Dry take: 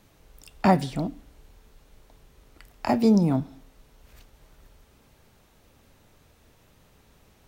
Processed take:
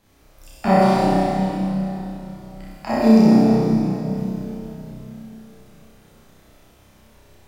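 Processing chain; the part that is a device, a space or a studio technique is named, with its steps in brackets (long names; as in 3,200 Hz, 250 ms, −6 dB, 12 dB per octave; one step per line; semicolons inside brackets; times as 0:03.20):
tunnel (flutter between parallel walls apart 5.4 metres, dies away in 0.88 s; convolution reverb RT60 3.4 s, pre-delay 6 ms, DRR −6.5 dB)
level −4.5 dB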